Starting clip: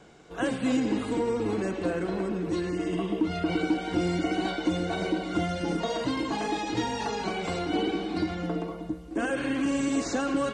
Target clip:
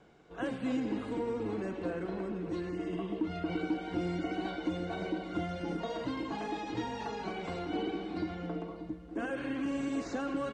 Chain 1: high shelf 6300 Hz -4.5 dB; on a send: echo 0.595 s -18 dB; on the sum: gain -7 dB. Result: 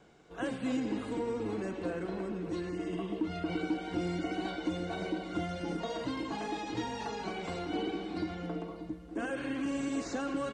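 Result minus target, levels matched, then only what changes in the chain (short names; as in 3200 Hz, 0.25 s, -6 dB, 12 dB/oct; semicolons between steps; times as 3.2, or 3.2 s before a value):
8000 Hz band +5.5 dB
change: high shelf 6300 Hz -15.5 dB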